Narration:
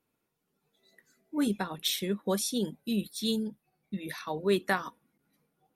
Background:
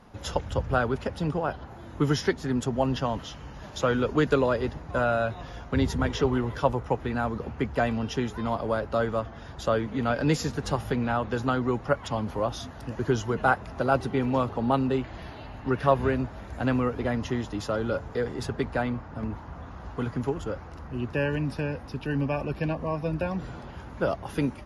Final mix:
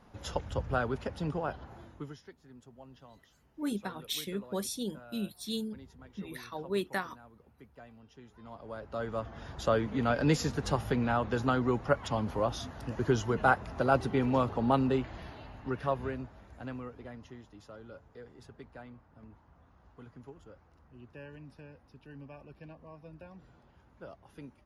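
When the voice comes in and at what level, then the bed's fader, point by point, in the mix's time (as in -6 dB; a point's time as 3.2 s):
2.25 s, -5.5 dB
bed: 1.81 s -6 dB
2.21 s -27 dB
8.12 s -27 dB
9.41 s -2.5 dB
14.91 s -2.5 dB
17.46 s -21 dB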